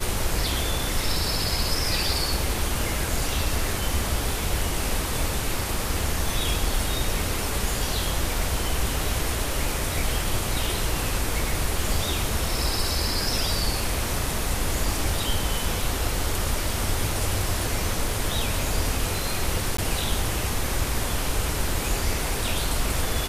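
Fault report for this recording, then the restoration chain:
19.77–19.78 gap 14 ms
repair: interpolate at 19.77, 14 ms

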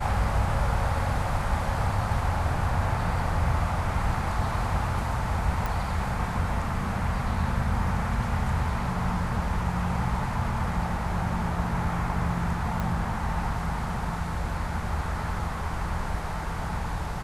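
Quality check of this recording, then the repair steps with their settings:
5.66 pop
12.8 pop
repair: de-click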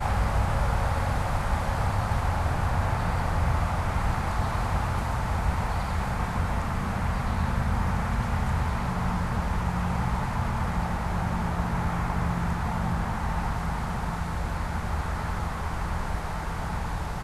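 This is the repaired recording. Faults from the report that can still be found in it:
12.8 pop

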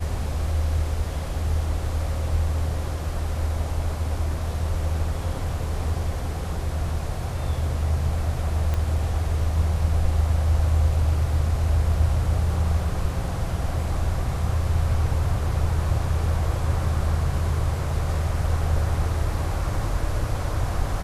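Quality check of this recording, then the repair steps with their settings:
8.74 pop -14 dBFS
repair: de-click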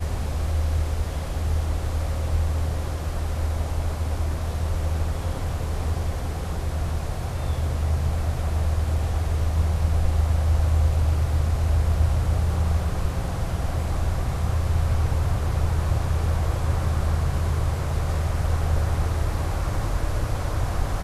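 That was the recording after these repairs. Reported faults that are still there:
8.74 pop

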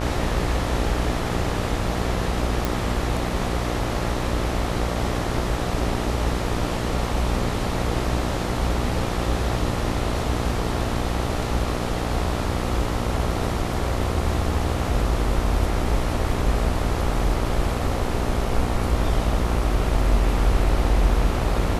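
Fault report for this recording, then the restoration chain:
buzz 60 Hz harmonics 23 -27 dBFS
2.65 pop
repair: de-click; de-hum 60 Hz, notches 23

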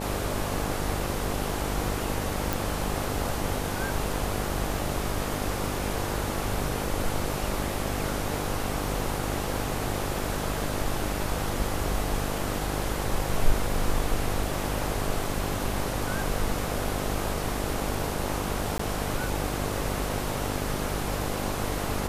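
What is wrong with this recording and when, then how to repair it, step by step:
buzz 50 Hz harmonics 17 -33 dBFS
2.53 pop
18.78–18.79 gap 14 ms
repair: de-click; de-hum 50 Hz, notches 17; interpolate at 18.78, 14 ms

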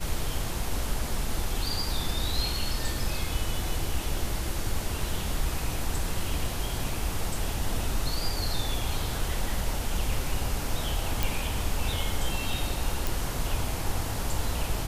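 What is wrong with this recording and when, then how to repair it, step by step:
11.23 pop
13.07 pop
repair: de-click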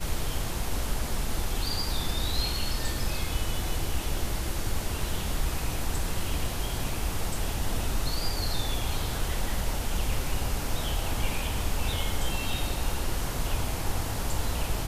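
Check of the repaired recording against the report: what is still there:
none

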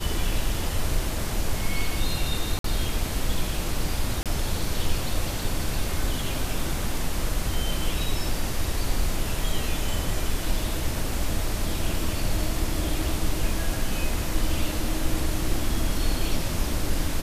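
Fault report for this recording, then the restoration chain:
2.59–2.64 gap 53 ms
4.23–4.26 gap 27 ms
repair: interpolate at 2.59, 53 ms; interpolate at 4.23, 27 ms

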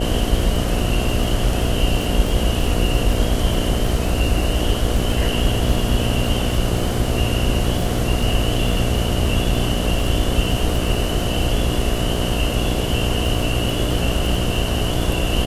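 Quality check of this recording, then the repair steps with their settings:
buzz 60 Hz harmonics 12 -24 dBFS
crackle 24/s -24 dBFS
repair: de-click; de-hum 60 Hz, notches 12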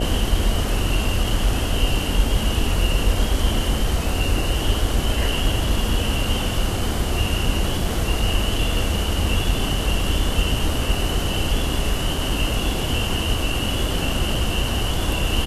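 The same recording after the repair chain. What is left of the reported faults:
none

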